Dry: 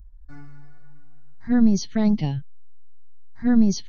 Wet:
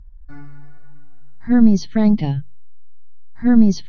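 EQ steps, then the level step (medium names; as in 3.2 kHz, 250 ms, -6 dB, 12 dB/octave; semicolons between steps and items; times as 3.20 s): distance through air 140 m; hum notches 50/100/150 Hz; band-stop 2.8 kHz, Q 25; +5.5 dB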